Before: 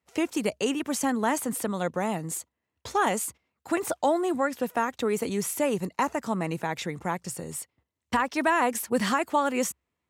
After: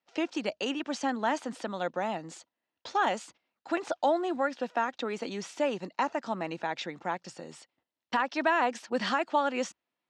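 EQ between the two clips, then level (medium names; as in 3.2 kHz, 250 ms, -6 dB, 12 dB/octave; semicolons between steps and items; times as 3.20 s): cabinet simulation 320–5200 Hz, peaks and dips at 430 Hz -8 dB, 1.1 kHz -5 dB, 2.1 kHz -5 dB; 0.0 dB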